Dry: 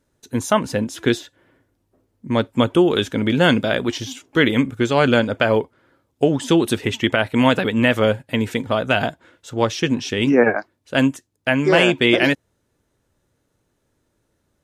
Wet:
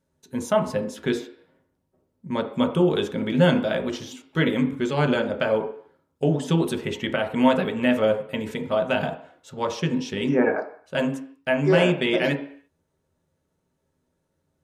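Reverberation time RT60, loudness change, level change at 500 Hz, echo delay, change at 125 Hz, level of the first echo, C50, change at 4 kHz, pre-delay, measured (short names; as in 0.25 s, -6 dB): 0.55 s, -5.0 dB, -4.0 dB, none, -3.0 dB, none, 10.0 dB, -8.5 dB, 3 ms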